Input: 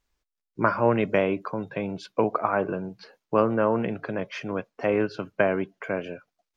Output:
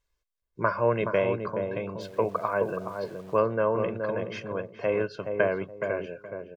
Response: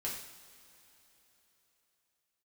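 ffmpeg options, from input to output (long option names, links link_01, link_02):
-filter_complex "[0:a]aecho=1:1:1.9:0.54,asplit=2[link_01][link_02];[link_02]adelay=422,lowpass=frequency=820:poles=1,volume=-4.5dB,asplit=2[link_03][link_04];[link_04]adelay=422,lowpass=frequency=820:poles=1,volume=0.28,asplit=2[link_05][link_06];[link_06]adelay=422,lowpass=frequency=820:poles=1,volume=0.28,asplit=2[link_07][link_08];[link_08]adelay=422,lowpass=frequency=820:poles=1,volume=0.28[link_09];[link_01][link_03][link_05][link_07][link_09]amix=inputs=5:normalize=0,asettb=1/sr,asplit=3[link_10][link_11][link_12];[link_10]atrim=end=2.014[link_13];[link_11]atrim=start=2.01:end=3.39,asetpts=PTS-STARTPTS,afade=type=in:duration=0.004:curve=qsin,afade=type=out:start_time=1.376:duration=0.004:curve=qsin,aeval=exprs='val(0)*gte(abs(val(0)),0.00562)':channel_layout=same[link_14];[link_12]atrim=start=3.386[link_15];[link_13][link_14]acrossfade=duration=0.004:curve1=hsin:curve2=qsin[link_16];[link_16][link_15]acrossfade=duration=0.004:curve1=qsin:curve2=hsin,volume=-4.5dB"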